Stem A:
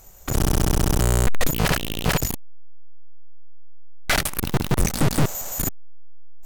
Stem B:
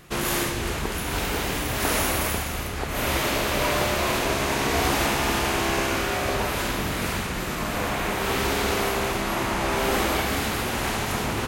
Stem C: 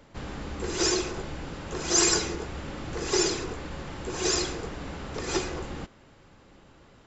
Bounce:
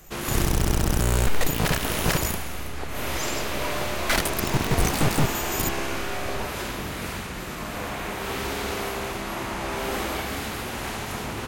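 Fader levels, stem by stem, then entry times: -3.0 dB, -5.0 dB, -13.0 dB; 0.00 s, 0.00 s, 1.25 s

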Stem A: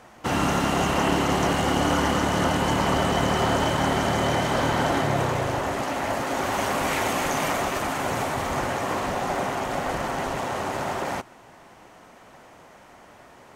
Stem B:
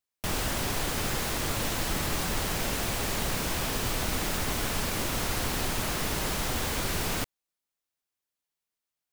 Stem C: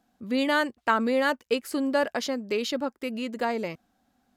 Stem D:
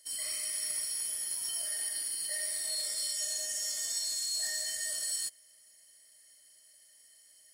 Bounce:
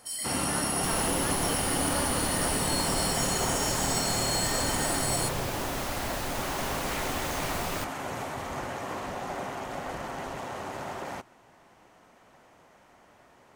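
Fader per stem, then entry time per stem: -8.5 dB, -5.0 dB, -14.5 dB, +2.5 dB; 0.00 s, 0.60 s, 0.00 s, 0.00 s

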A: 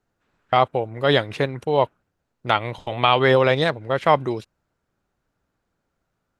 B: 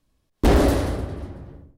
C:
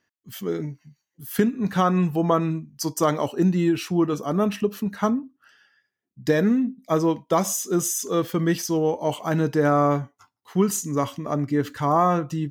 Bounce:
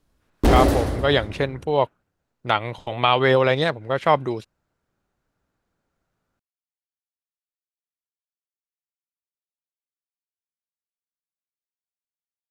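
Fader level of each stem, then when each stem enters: -1.0 dB, 0.0 dB, mute; 0.00 s, 0.00 s, mute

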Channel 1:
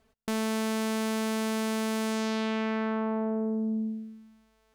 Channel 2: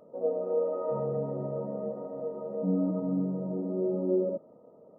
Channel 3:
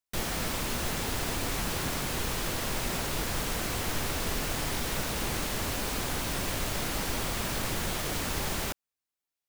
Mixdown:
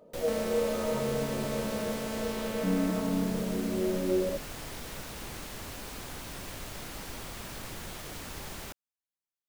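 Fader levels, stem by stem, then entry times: -7.5 dB, -1.0 dB, -9.5 dB; 0.00 s, 0.00 s, 0.00 s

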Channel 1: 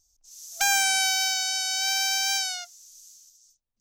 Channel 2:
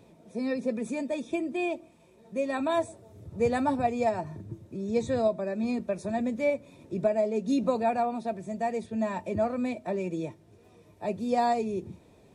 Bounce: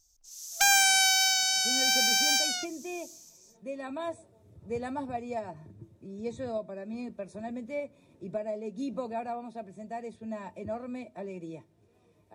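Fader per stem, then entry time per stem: +0.5 dB, -8.5 dB; 0.00 s, 1.30 s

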